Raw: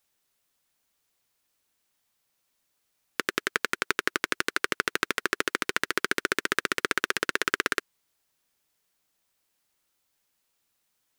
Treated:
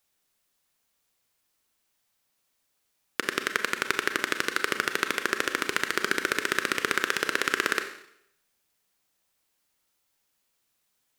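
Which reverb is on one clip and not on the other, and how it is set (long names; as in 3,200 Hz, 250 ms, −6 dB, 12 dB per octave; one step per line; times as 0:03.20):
four-comb reverb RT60 0.72 s, combs from 29 ms, DRR 7 dB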